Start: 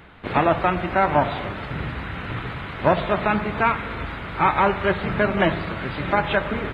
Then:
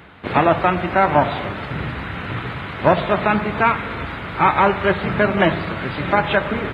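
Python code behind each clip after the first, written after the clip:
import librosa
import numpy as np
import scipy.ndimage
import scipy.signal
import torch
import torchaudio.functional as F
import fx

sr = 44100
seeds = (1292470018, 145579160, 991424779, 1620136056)

y = scipy.signal.sosfilt(scipy.signal.butter(2, 68.0, 'highpass', fs=sr, output='sos'), x)
y = y * 10.0 ** (3.5 / 20.0)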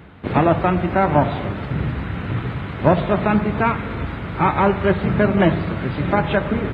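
y = fx.low_shelf(x, sr, hz=490.0, db=11.0)
y = y * 10.0 ** (-5.5 / 20.0)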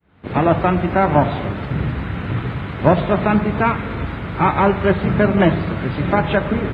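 y = fx.fade_in_head(x, sr, length_s=0.52)
y = y * 10.0 ** (1.5 / 20.0)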